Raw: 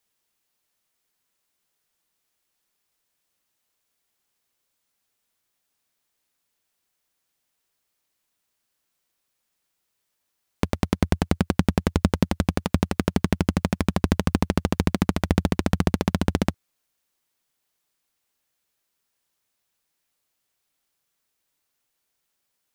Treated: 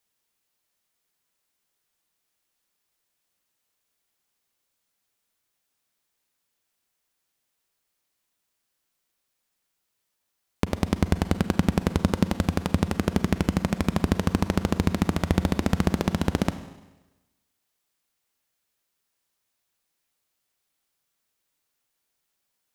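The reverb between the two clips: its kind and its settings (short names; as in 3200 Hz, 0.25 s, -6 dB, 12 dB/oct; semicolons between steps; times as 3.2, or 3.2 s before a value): Schroeder reverb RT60 1.1 s, combs from 33 ms, DRR 11 dB; gain -1.5 dB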